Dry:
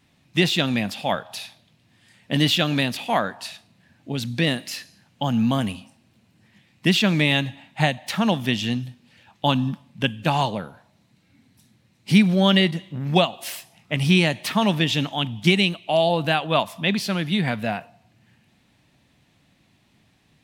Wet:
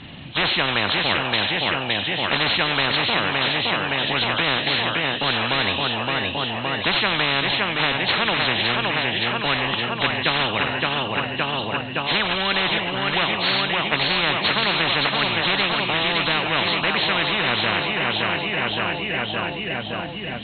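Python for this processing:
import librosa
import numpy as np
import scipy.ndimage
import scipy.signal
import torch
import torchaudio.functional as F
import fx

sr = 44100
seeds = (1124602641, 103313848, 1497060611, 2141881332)

p1 = fx.freq_compress(x, sr, knee_hz=2700.0, ratio=4.0)
p2 = fx.air_absorb(p1, sr, metres=67.0)
p3 = p2 + fx.echo_feedback(p2, sr, ms=567, feedback_pct=58, wet_db=-10.5, dry=0)
y = fx.spectral_comp(p3, sr, ratio=10.0)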